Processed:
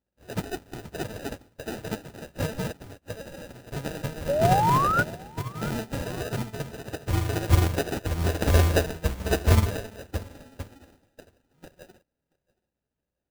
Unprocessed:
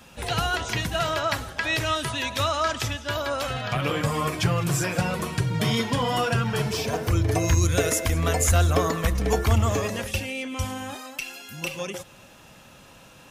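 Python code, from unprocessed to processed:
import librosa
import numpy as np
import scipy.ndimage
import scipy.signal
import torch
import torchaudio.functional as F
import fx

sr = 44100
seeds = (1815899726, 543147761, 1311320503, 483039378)

y = fx.hum_notches(x, sr, base_hz=60, count=4)
y = fx.add_hum(y, sr, base_hz=60, snr_db=26)
y = fx.vibrato(y, sr, rate_hz=12.0, depth_cents=93.0)
y = fx.sample_hold(y, sr, seeds[0], rate_hz=1100.0, jitter_pct=0)
y = fx.mod_noise(y, sr, seeds[1], snr_db=21)
y = fx.spec_paint(y, sr, seeds[2], shape='rise', start_s=4.28, length_s=0.75, low_hz=540.0, high_hz=1500.0, level_db=-21.0)
y = fx.echo_feedback(y, sr, ms=678, feedback_pct=29, wet_db=-12.0)
y = fx.upward_expand(y, sr, threshold_db=-44.0, expansion=2.5)
y = F.gain(torch.from_numpy(y), 3.5).numpy()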